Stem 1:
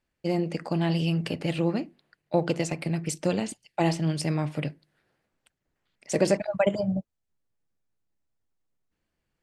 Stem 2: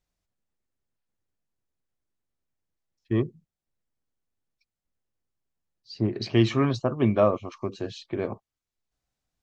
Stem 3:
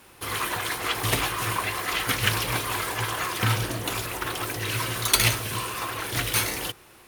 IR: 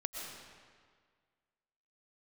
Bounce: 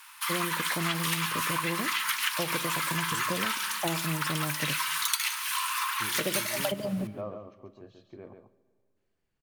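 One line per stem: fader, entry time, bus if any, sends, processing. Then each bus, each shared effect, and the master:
-3.0 dB, 0.05 s, send -21 dB, no echo send, dry
-18.0 dB, 0.00 s, send -15 dB, echo send -5.5 dB, high shelf 2900 Hz -9.5 dB
+3.0 dB, 0.00 s, send -23.5 dB, echo send -18.5 dB, steep high-pass 890 Hz 96 dB/oct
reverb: on, RT60 1.8 s, pre-delay 80 ms
echo: echo 0.138 s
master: compressor 6:1, threshold -26 dBFS, peak gain reduction 14.5 dB

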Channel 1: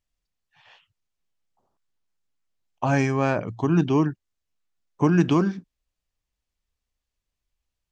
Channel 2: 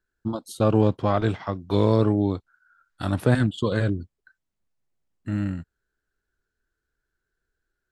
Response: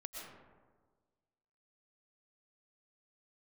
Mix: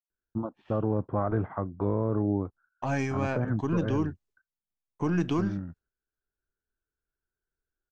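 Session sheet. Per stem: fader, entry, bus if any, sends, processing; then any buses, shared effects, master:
-5.5 dB, 0.00 s, no send, half-wave gain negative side -3 dB; expander -55 dBFS
-1.5 dB, 0.10 s, no send, gate -55 dBFS, range -8 dB; LPF 1500 Hz 24 dB/oct; auto duck -6 dB, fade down 1.05 s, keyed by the first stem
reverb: off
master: limiter -18 dBFS, peak gain reduction 7 dB

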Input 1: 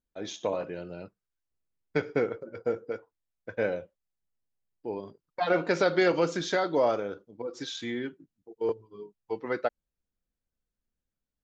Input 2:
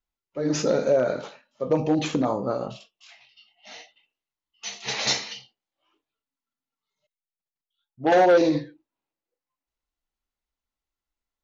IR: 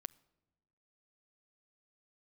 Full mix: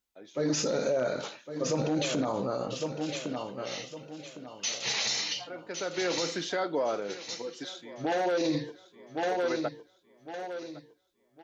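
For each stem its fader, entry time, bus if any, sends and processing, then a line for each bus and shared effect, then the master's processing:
-3.0 dB, 0.00 s, send -16 dB, echo send -20 dB, HPF 170 Hz; auto duck -21 dB, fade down 0.30 s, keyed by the second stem
-1.5 dB, 0.00 s, no send, echo send -10.5 dB, HPF 45 Hz; high shelf 2700 Hz +9.5 dB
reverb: on, RT60 1.1 s, pre-delay 7 ms
echo: feedback echo 1.108 s, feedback 32%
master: limiter -20.5 dBFS, peak gain reduction 14 dB

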